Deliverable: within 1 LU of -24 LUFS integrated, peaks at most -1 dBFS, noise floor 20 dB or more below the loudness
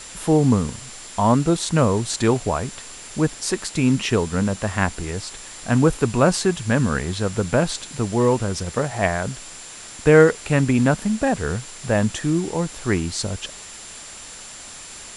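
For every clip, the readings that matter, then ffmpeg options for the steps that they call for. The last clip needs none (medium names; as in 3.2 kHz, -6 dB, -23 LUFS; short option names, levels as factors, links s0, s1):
steady tone 7.3 kHz; tone level -41 dBFS; noise floor -39 dBFS; noise floor target -41 dBFS; loudness -21.0 LUFS; peak level -1.0 dBFS; loudness target -24.0 LUFS
-> -af "bandreject=f=7300:w=30"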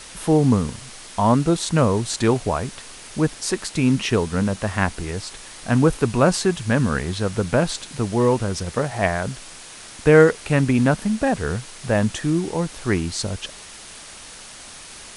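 steady tone not found; noise floor -40 dBFS; noise floor target -41 dBFS
-> -af "afftdn=nr=6:nf=-40"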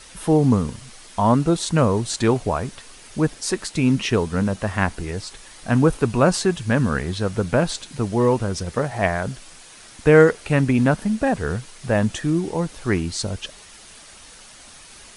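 noise floor -45 dBFS; loudness -21.0 LUFS; peak level -1.0 dBFS; loudness target -24.0 LUFS
-> -af "volume=0.708"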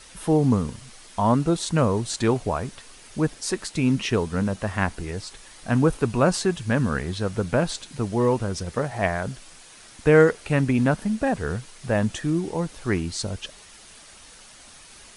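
loudness -24.0 LUFS; peak level -4.0 dBFS; noise floor -48 dBFS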